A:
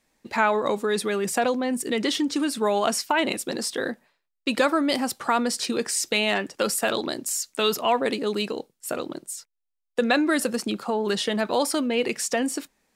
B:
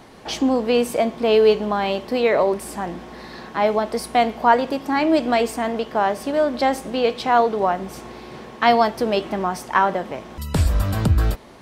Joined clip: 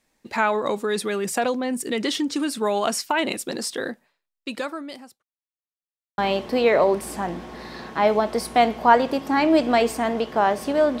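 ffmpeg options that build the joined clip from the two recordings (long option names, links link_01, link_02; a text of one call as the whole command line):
ffmpeg -i cue0.wav -i cue1.wav -filter_complex "[0:a]apad=whole_dur=11,atrim=end=11,asplit=2[link_01][link_02];[link_01]atrim=end=5.23,asetpts=PTS-STARTPTS,afade=type=out:start_time=3.7:duration=1.53[link_03];[link_02]atrim=start=5.23:end=6.18,asetpts=PTS-STARTPTS,volume=0[link_04];[1:a]atrim=start=1.77:end=6.59,asetpts=PTS-STARTPTS,afade=type=in:duration=0.004:curve=hsin[link_05];[link_03][link_04][link_05]concat=n=3:v=0:a=1" out.wav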